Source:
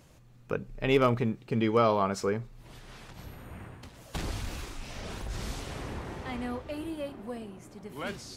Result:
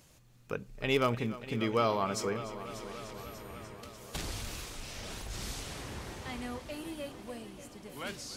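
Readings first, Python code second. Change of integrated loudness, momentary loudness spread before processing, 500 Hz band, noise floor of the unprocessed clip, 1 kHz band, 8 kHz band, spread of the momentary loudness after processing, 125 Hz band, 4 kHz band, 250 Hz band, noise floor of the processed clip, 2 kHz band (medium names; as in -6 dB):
-4.5 dB, 22 LU, -5.0 dB, -56 dBFS, -3.5 dB, +3.5 dB, 16 LU, -5.0 dB, +1.0 dB, -5.0 dB, -60 dBFS, -1.5 dB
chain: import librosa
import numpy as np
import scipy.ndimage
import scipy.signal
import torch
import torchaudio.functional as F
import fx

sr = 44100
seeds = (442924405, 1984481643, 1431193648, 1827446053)

p1 = fx.high_shelf(x, sr, hz=2600.0, db=9.5)
p2 = p1 + fx.echo_heads(p1, sr, ms=295, heads='first and second', feedback_pct=70, wet_db=-16.5, dry=0)
y = p2 * 10.0 ** (-5.5 / 20.0)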